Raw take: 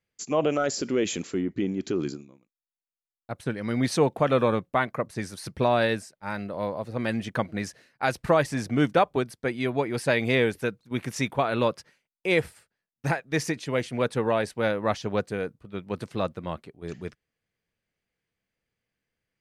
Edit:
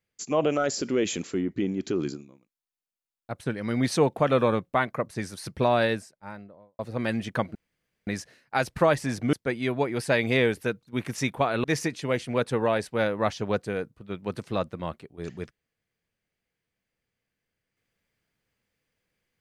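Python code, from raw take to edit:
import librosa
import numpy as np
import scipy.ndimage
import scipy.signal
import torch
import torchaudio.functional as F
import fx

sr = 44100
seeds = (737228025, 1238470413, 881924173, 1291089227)

y = fx.studio_fade_out(x, sr, start_s=5.79, length_s=1.0)
y = fx.edit(y, sr, fx.insert_room_tone(at_s=7.55, length_s=0.52),
    fx.cut(start_s=8.81, length_s=0.5),
    fx.cut(start_s=11.62, length_s=1.66), tone=tone)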